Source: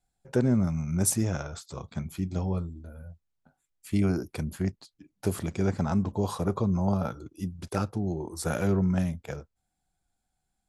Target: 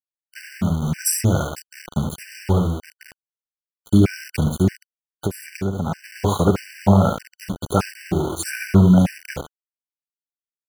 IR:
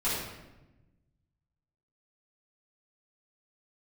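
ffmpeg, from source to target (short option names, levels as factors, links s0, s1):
-filter_complex "[0:a]dynaudnorm=f=450:g=3:m=5.01,asplit=2[s0][s1];[s1]aecho=0:1:72:0.531[s2];[s0][s2]amix=inputs=2:normalize=0,aeval=exprs='val(0)*gte(abs(val(0)),0.0596)':c=same,asettb=1/sr,asplit=3[s3][s4][s5];[s3]atrim=end=4.694[s6];[s4]atrim=start=4.69:end=6.04,asetpts=PTS-STARTPTS,afade=t=in:d=0.004:c=qsin,afade=t=out:st=1.346:d=0.004:c=qsin,acompressor=threshold=0.112:ratio=6[s7];[s5]atrim=start=6.036[s8];[s6][s7]acrossfade=d=0.004:c1=hsin:c2=qsin[s9];[s9][s8]acrossfade=d=0.004:c1=qsin:c2=hsin,afftfilt=real='re*gt(sin(2*PI*1.6*pts/sr)*(1-2*mod(floor(b*sr/1024/1500),2)),0)':imag='im*gt(sin(2*PI*1.6*pts/sr)*(1-2*mod(floor(b*sr/1024/1500),2)),0)':win_size=1024:overlap=0.75"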